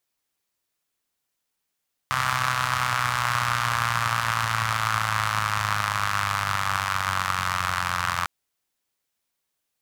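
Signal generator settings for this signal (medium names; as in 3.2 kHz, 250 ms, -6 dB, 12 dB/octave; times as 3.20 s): four-cylinder engine model, changing speed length 6.15 s, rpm 3900, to 2600, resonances 110/1200 Hz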